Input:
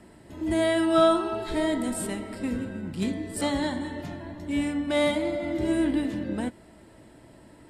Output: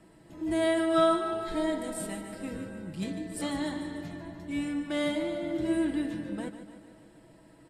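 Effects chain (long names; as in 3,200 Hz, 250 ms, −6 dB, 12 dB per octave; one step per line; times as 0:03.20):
comb filter 6.2 ms, depth 51%
on a send: repeating echo 148 ms, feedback 59%, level −11 dB
on the sum: level −6.5 dB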